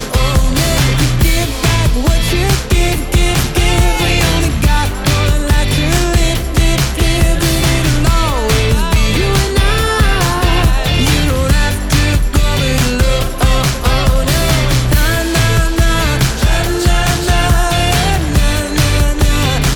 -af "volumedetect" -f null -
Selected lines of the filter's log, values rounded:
mean_volume: -11.4 dB
max_volume: -2.7 dB